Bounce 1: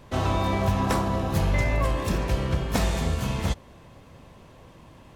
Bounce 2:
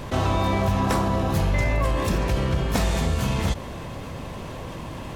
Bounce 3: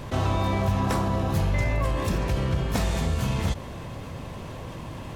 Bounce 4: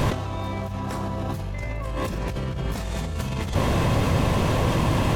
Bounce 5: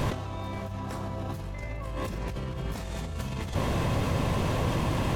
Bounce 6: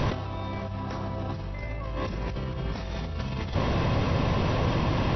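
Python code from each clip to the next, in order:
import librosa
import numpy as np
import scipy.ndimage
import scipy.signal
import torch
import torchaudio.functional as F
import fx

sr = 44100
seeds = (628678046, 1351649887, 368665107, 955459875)

y1 = fx.env_flatten(x, sr, amount_pct=50)
y2 = fx.peak_eq(y1, sr, hz=110.0, db=3.5, octaves=1.0)
y2 = y2 * 10.0 ** (-3.5 / 20.0)
y3 = fx.over_compress(y2, sr, threshold_db=-34.0, ratio=-1.0)
y3 = y3 * 10.0 ** (8.5 / 20.0)
y4 = y3 + 10.0 ** (-14.0 / 20.0) * np.pad(y3, (int(531 * sr / 1000.0), 0))[:len(y3)]
y4 = y4 * 10.0 ** (-6.0 / 20.0)
y5 = fx.brickwall_lowpass(y4, sr, high_hz=5900.0)
y5 = y5 * 10.0 ** (2.0 / 20.0)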